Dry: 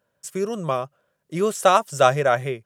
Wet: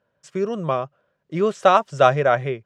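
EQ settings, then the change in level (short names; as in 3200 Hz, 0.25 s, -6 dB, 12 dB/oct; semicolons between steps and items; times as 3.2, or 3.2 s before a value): air absorption 160 m; +2.0 dB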